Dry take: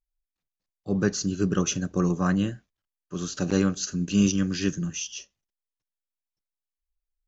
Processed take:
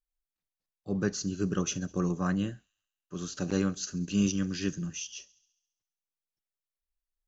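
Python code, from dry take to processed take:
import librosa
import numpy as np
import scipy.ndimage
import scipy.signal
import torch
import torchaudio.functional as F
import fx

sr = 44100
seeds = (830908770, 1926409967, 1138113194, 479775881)

y = fx.echo_wet_highpass(x, sr, ms=68, feedback_pct=63, hz=4000.0, wet_db=-19)
y = y * librosa.db_to_amplitude(-5.5)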